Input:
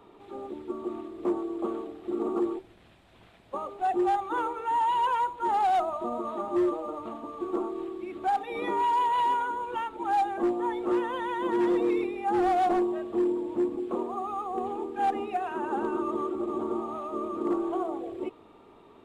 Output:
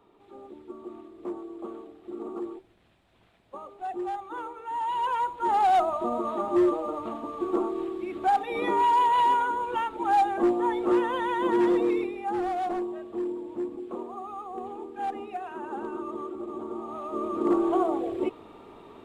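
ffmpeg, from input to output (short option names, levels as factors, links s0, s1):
-af "volume=5.31,afade=t=in:st=4.66:d=1.11:silence=0.298538,afade=t=out:st=11.47:d=1.01:silence=0.375837,afade=t=in:st=16.75:d=1:silence=0.281838"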